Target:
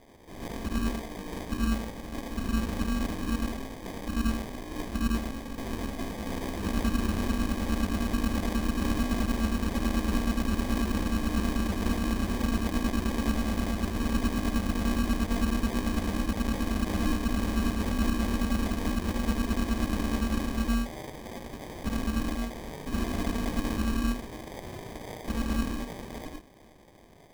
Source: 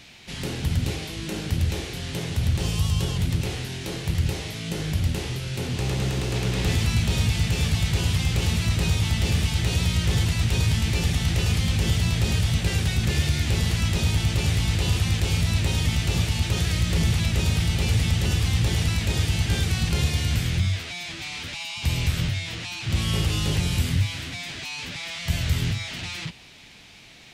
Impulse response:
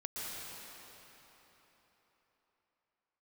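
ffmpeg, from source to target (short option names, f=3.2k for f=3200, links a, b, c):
-filter_complex "[1:a]atrim=start_sample=2205,afade=t=out:st=0.2:d=0.01,atrim=end_sample=9261,asetrate=66150,aresample=44100[a];[0:a][a]afir=irnorm=-1:irlink=0,aeval=exprs='val(0)*sin(2*PI*140*n/s)':c=same,acrusher=samples=32:mix=1:aa=0.000001,volume=3dB"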